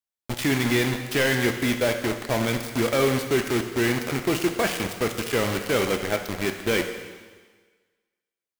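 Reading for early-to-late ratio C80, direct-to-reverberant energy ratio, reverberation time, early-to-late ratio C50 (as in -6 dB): 9.0 dB, 5.0 dB, 1.4 s, 7.5 dB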